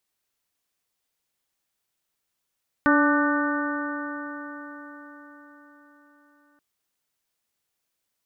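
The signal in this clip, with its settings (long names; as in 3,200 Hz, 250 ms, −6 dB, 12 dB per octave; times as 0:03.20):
stiff-string partials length 3.73 s, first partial 289 Hz, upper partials −7/−9/−4.5/−3/−10 dB, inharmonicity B 0.0026, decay 4.95 s, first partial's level −18 dB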